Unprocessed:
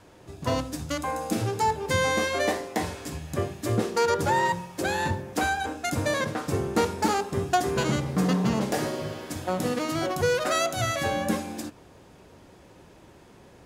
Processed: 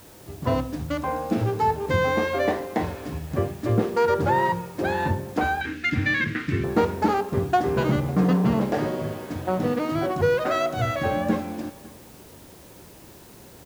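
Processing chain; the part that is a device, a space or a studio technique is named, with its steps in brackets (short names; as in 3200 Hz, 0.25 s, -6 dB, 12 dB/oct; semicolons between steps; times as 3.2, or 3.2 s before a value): cassette deck with a dirty head (tape spacing loss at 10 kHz 27 dB; wow and flutter 16 cents; white noise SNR 27 dB); 5.61–6.64 EQ curve 340 Hz 0 dB, 560 Hz -20 dB, 830 Hz -20 dB, 1900 Hz +13 dB, 12000 Hz -9 dB; echo 0.552 s -23 dB; gain +4.5 dB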